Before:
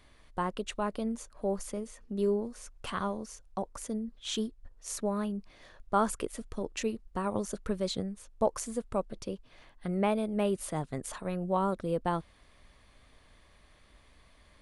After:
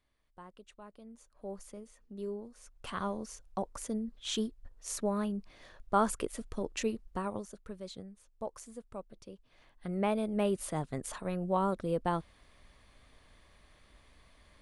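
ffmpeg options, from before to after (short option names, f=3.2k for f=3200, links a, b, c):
-af "volume=10.5dB,afade=t=in:st=1.06:d=0.45:silence=0.375837,afade=t=in:st=2.54:d=0.7:silence=0.316228,afade=t=out:st=7.08:d=0.41:silence=0.266073,afade=t=in:st=9.32:d=0.96:silence=0.281838"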